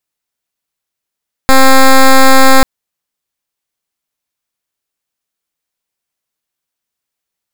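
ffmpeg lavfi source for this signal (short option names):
-f lavfi -i "aevalsrc='0.708*(2*lt(mod(265*t,1),0.09)-1)':d=1.14:s=44100"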